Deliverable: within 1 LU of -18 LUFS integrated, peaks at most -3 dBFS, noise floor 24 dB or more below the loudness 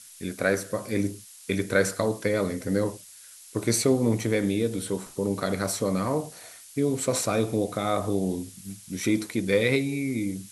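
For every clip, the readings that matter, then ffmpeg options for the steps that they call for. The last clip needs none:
noise floor -48 dBFS; noise floor target -51 dBFS; loudness -27.0 LUFS; peak -8.5 dBFS; loudness target -18.0 LUFS
-> -af "afftdn=nr=6:nf=-48"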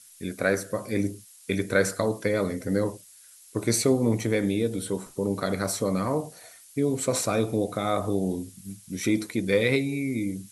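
noise floor -52 dBFS; loudness -27.0 LUFS; peak -8.5 dBFS; loudness target -18.0 LUFS
-> -af "volume=9dB,alimiter=limit=-3dB:level=0:latency=1"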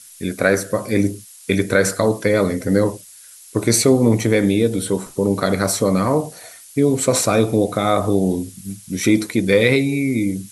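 loudness -18.5 LUFS; peak -3.0 dBFS; noise floor -43 dBFS

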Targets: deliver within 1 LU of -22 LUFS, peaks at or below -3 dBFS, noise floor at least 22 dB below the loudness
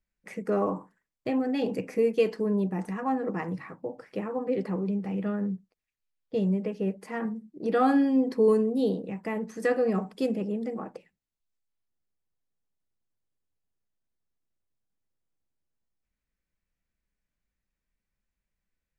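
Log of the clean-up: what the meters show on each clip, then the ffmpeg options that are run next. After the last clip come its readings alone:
loudness -28.5 LUFS; peak -13.0 dBFS; loudness target -22.0 LUFS
-> -af "volume=6.5dB"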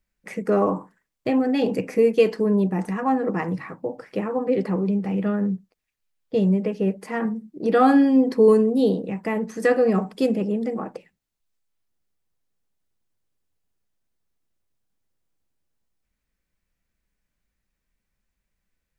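loudness -22.0 LUFS; peak -6.5 dBFS; noise floor -81 dBFS

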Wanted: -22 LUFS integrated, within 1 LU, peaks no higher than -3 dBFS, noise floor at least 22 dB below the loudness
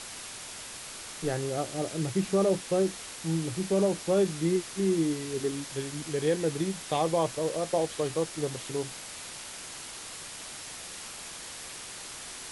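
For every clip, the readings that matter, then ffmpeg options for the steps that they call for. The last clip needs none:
noise floor -42 dBFS; noise floor target -53 dBFS; loudness -31.0 LUFS; peak -14.5 dBFS; loudness target -22.0 LUFS
-> -af "afftdn=nr=11:nf=-42"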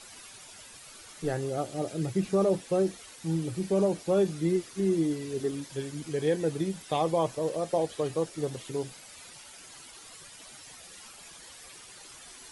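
noise floor -49 dBFS; noise floor target -52 dBFS
-> -af "afftdn=nr=6:nf=-49"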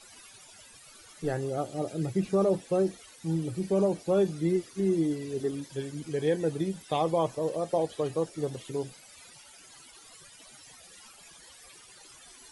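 noise floor -53 dBFS; loudness -30.0 LUFS; peak -15.5 dBFS; loudness target -22.0 LUFS
-> -af "volume=8dB"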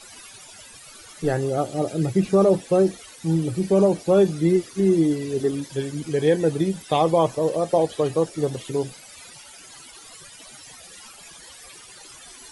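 loudness -22.0 LUFS; peak -7.5 dBFS; noise floor -45 dBFS

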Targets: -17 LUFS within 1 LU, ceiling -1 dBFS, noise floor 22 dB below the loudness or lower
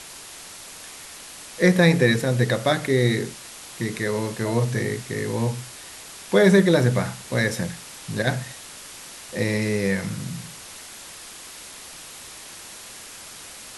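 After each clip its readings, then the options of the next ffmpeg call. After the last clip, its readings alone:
noise floor -41 dBFS; noise floor target -45 dBFS; loudness -22.5 LUFS; peak -2.5 dBFS; loudness target -17.0 LUFS
-> -af "afftdn=nr=6:nf=-41"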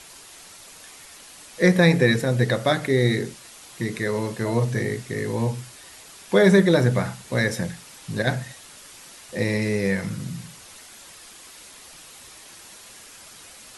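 noise floor -46 dBFS; loudness -22.5 LUFS; peak -2.5 dBFS; loudness target -17.0 LUFS
-> -af "volume=5.5dB,alimiter=limit=-1dB:level=0:latency=1"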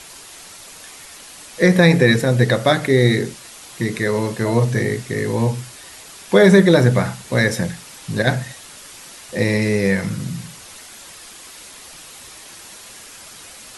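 loudness -17.5 LUFS; peak -1.0 dBFS; noise floor -40 dBFS

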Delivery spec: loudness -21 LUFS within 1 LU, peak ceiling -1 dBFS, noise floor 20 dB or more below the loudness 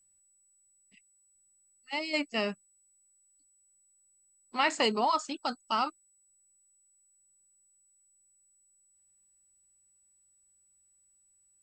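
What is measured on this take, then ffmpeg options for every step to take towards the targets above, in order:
steady tone 7900 Hz; tone level -65 dBFS; loudness -31.0 LUFS; peak -14.0 dBFS; loudness target -21.0 LUFS
-> -af "bandreject=f=7.9k:w=30"
-af "volume=10dB"

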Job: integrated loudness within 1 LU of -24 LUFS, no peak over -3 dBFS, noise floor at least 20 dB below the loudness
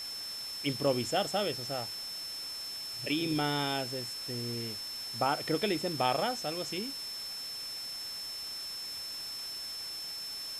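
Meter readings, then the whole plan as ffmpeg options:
steady tone 5300 Hz; tone level -38 dBFS; noise floor -41 dBFS; noise floor target -54 dBFS; loudness -34.0 LUFS; peak -14.0 dBFS; loudness target -24.0 LUFS
-> -af "bandreject=f=5.3k:w=30"
-af "afftdn=nr=13:nf=-41"
-af "volume=10dB"

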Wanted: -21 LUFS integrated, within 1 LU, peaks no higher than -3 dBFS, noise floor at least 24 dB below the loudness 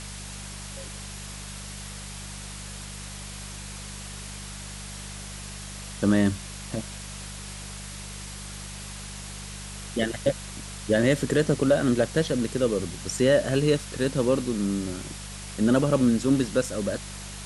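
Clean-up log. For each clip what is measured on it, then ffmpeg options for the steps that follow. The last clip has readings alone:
hum 50 Hz; harmonics up to 200 Hz; hum level -38 dBFS; noise floor -39 dBFS; noise floor target -52 dBFS; loudness -28.0 LUFS; peak -9.0 dBFS; loudness target -21.0 LUFS
-> -af "bandreject=f=50:t=h:w=4,bandreject=f=100:t=h:w=4,bandreject=f=150:t=h:w=4,bandreject=f=200:t=h:w=4"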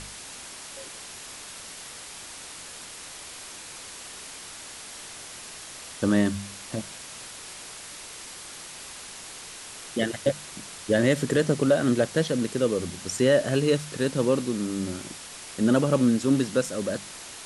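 hum none; noise floor -42 dBFS; noise floor target -50 dBFS
-> -af "afftdn=nr=8:nf=-42"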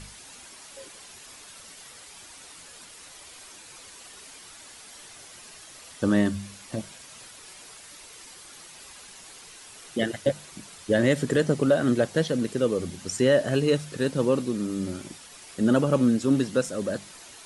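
noise floor -47 dBFS; noise floor target -50 dBFS
-> -af "afftdn=nr=6:nf=-47"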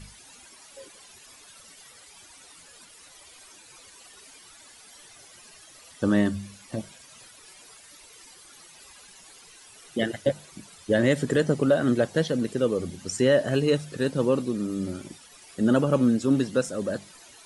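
noise floor -51 dBFS; loudness -25.5 LUFS; peak -9.5 dBFS; loudness target -21.0 LUFS
-> -af "volume=4.5dB"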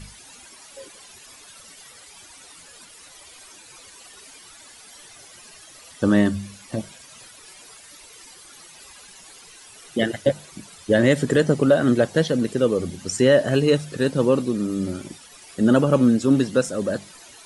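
loudness -21.0 LUFS; peak -5.0 dBFS; noise floor -47 dBFS

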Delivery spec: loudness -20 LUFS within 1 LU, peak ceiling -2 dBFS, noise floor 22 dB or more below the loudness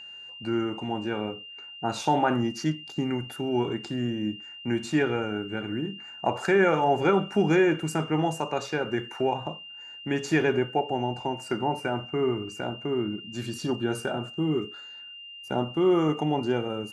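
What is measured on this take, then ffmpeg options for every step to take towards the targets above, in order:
steady tone 2800 Hz; tone level -41 dBFS; loudness -27.5 LUFS; peak -10.0 dBFS; loudness target -20.0 LUFS
-> -af "bandreject=f=2.8k:w=30"
-af "volume=7.5dB"

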